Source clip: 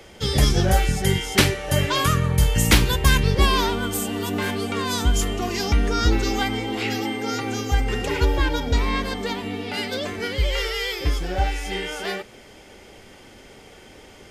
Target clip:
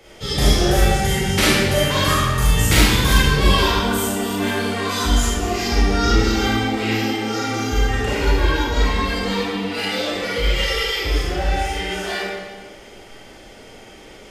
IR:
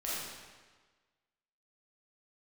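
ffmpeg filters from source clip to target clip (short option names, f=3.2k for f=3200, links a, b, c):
-filter_complex "[0:a]asettb=1/sr,asplit=3[a][b][c];[a]atrim=end=9.074[d];[b]atrim=start=9.07:end=10.76,asetpts=PTS-STARTPTS,afade=t=in:d=0.004:c=qsin,afade=t=out:st=1.686:d=0.004:c=qsin,aecho=1:1:6.1:0.67,atrim=end_sample=74529[e];[c]atrim=start=10.756[f];[d][e]acrossfade=d=0.004:c1=hsin:c2=qsin[g];[g][f]acrossfade=d=0.004:c1=qsin:c2=hsin[h];[1:a]atrim=start_sample=2205[i];[h][i]afir=irnorm=-1:irlink=0"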